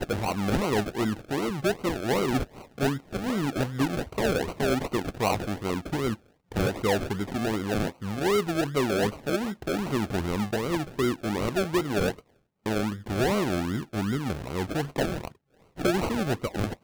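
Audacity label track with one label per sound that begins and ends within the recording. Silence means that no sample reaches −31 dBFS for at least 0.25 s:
2.780000	6.140000	sound
6.520000	12.120000	sound
12.660000	15.280000	sound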